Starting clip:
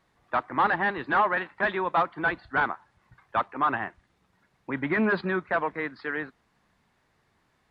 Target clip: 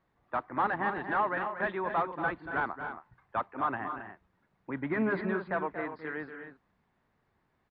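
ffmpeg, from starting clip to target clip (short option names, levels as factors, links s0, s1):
-af "lowpass=f=1500:p=1,aecho=1:1:233.2|271.1:0.316|0.316,volume=0.596"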